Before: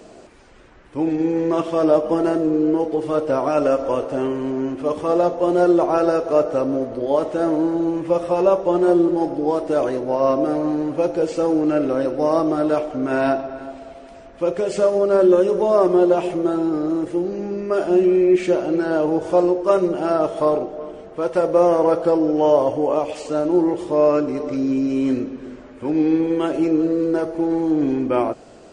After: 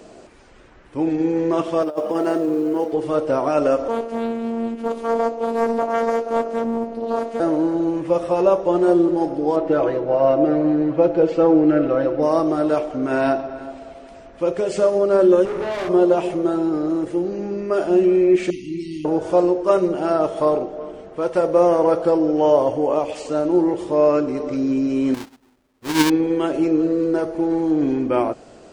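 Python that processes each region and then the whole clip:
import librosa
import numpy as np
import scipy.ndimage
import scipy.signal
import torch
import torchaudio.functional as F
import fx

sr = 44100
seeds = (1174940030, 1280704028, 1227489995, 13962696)

y = fx.chain(x, sr, fx.highpass(hz=280.0, slope=6),
    fx.over_compress(threshold_db=-20.0, ratio=-0.5),
    fx.quant_companded(bits=8), at=(1.82, 2.93))
y = fx.chain(y, sr, fx.robotise(hz=230.0),
    fx.doubler(ms=17.0, db=-11.5),
    fx.doppler_dist(depth_ms=0.46), at=(3.88, 7.4))
y = fx.chain(y, sr, fx.lowpass(hz=3100.0, slope=12),
    fx.comb(ms=6.1, depth=0.7), at=(9.56, 12.23))
y = fx.chain(y, sr, fx.tube_stage(drive_db=24.0, bias=0.4),
    fx.room_flutter(wall_m=8.7, rt60_s=0.53), at=(15.45, 15.89))
y = fx.chain(y, sr, fx.brickwall_bandstop(low_hz=410.0, high_hz=1900.0),
    fx.peak_eq(hz=440.0, db=-14.0, octaves=0.84), at=(18.5, 19.05))
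y = fx.chain(y, sr, fx.halfwave_hold(),
    fx.dynamic_eq(hz=4700.0, q=0.78, threshold_db=-36.0, ratio=4.0, max_db=4),
    fx.upward_expand(threshold_db=-31.0, expansion=2.5), at=(25.14, 26.1))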